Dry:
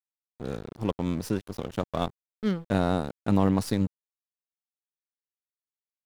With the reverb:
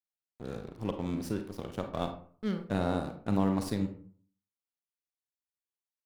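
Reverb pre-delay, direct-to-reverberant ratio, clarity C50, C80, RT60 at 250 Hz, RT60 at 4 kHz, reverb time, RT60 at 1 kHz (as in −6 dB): 34 ms, 6.0 dB, 9.0 dB, 13.5 dB, 0.55 s, 0.25 s, 0.50 s, 0.45 s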